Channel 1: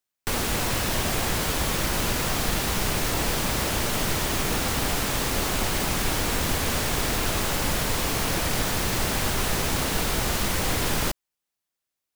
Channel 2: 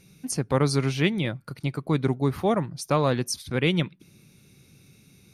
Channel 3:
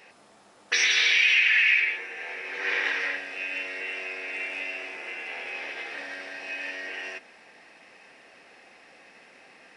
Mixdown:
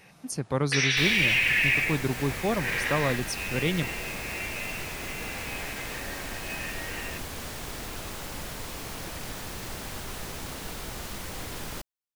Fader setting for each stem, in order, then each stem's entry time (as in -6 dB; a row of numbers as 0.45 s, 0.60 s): -12.0 dB, -4.5 dB, -3.0 dB; 0.70 s, 0.00 s, 0.00 s